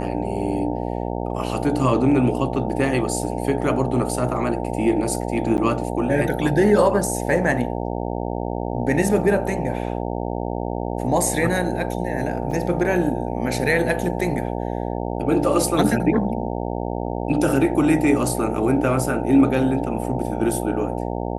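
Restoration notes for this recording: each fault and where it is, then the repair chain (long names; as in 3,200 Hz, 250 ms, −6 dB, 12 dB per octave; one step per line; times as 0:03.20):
mains buzz 60 Hz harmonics 15 −26 dBFS
0:05.57–0:05.58: drop-out 9.7 ms
0:12.51: drop-out 4.7 ms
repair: hum removal 60 Hz, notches 15
repair the gap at 0:05.57, 9.7 ms
repair the gap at 0:12.51, 4.7 ms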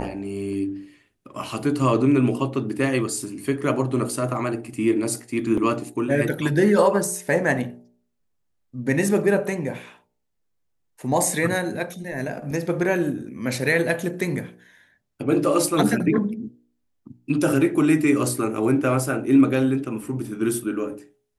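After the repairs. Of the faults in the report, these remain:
none of them is left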